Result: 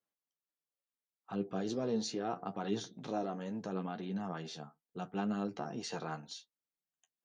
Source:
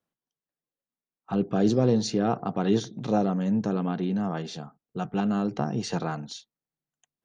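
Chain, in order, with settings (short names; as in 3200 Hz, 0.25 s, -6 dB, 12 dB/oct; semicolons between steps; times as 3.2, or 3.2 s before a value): low shelf 230 Hz -10.5 dB; in parallel at -2 dB: limiter -24 dBFS, peak gain reduction 9.5 dB; on the sum: flange 0.75 Hz, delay 9.3 ms, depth 4.3 ms, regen +37%; gain -8 dB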